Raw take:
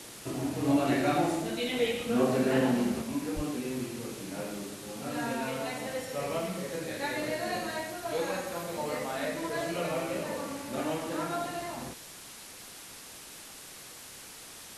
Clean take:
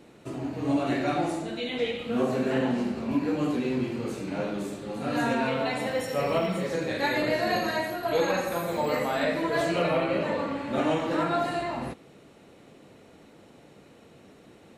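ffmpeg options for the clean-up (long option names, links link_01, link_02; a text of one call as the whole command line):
ffmpeg -i in.wav -filter_complex "[0:a]asplit=3[link_01][link_02][link_03];[link_01]afade=type=out:start_time=3.35:duration=0.02[link_04];[link_02]highpass=frequency=140:width=0.5412,highpass=frequency=140:width=1.3066,afade=type=in:start_time=3.35:duration=0.02,afade=type=out:start_time=3.47:duration=0.02[link_05];[link_03]afade=type=in:start_time=3.47:duration=0.02[link_06];[link_04][link_05][link_06]amix=inputs=3:normalize=0,afwtdn=0.0056,asetnsamples=nb_out_samples=441:pad=0,asendcmd='3.02 volume volume 7dB',volume=0dB" out.wav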